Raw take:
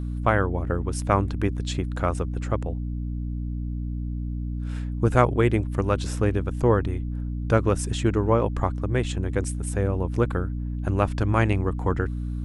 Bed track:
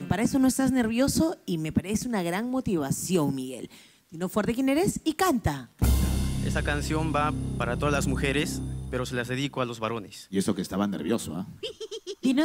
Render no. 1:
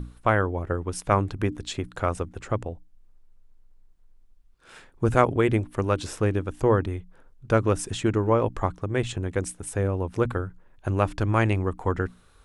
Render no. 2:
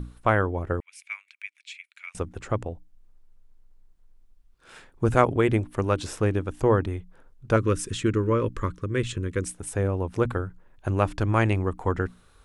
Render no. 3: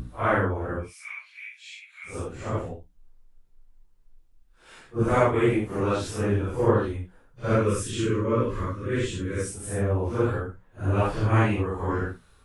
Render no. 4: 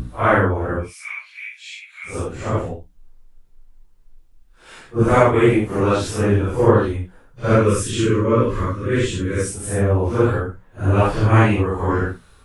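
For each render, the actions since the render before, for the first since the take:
mains-hum notches 60/120/180/240/300 Hz
0:00.80–0:02.15: four-pole ladder high-pass 2,200 Hz, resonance 85%; 0:07.56–0:09.45: Butterworth band-reject 750 Hz, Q 1.4
random phases in long frames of 200 ms
level +7.5 dB; brickwall limiter −1 dBFS, peak gain reduction 2 dB

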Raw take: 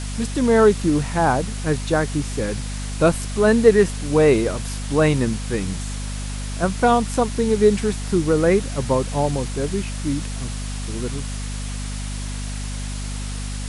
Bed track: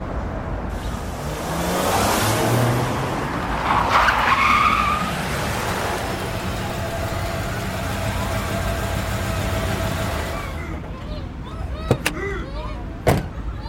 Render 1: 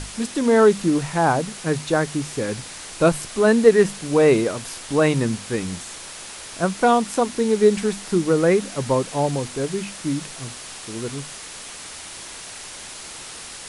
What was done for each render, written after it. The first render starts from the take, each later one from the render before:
mains-hum notches 50/100/150/200/250 Hz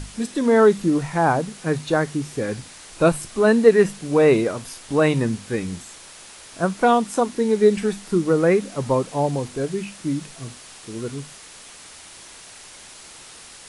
noise reduction from a noise print 6 dB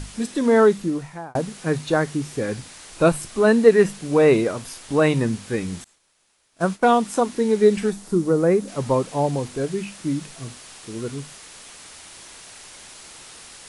0:00.58–0:01.35: fade out
0:05.84–0:06.96: downward expander −30 dBFS
0:07.90–0:08.68: parametric band 2,500 Hz −8.5 dB 2 octaves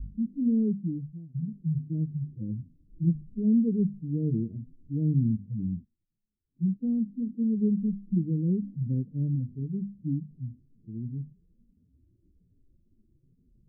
harmonic-percussive split with one part muted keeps harmonic
inverse Chebyshev low-pass filter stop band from 800 Hz, stop band 60 dB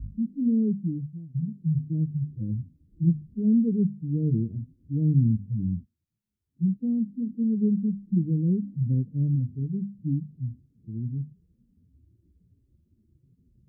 high-pass filter 49 Hz
parametric band 88 Hz +7 dB 1.6 octaves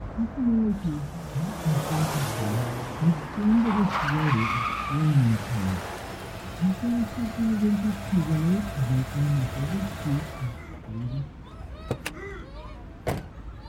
mix in bed track −11.5 dB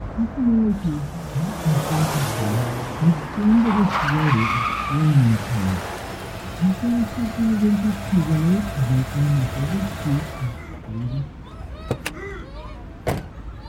level +5 dB

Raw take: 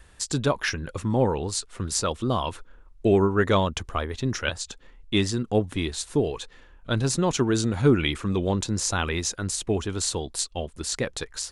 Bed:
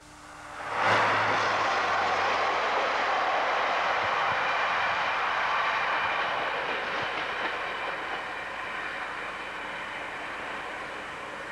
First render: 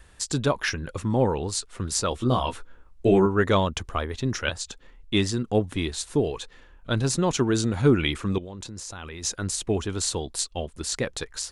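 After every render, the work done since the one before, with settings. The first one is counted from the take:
0:02.10–0:03.26: double-tracking delay 16 ms −4 dB
0:08.38–0:09.24: output level in coarse steps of 19 dB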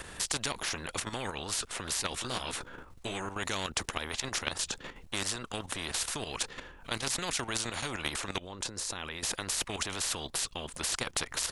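output level in coarse steps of 12 dB
every bin compressed towards the loudest bin 4 to 1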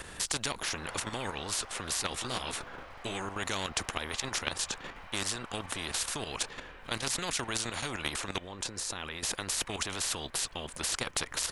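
mix in bed −23 dB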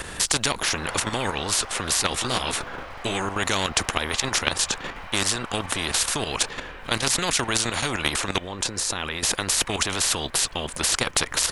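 level +10 dB

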